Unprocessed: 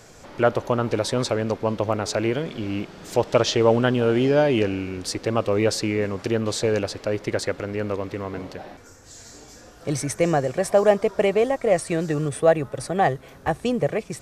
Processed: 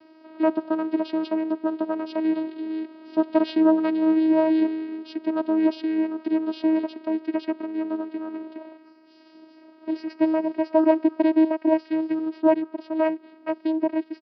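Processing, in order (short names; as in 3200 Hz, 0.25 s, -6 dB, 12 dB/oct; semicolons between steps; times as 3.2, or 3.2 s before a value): vocoder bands 8, saw 317 Hz; downsampling 11025 Hz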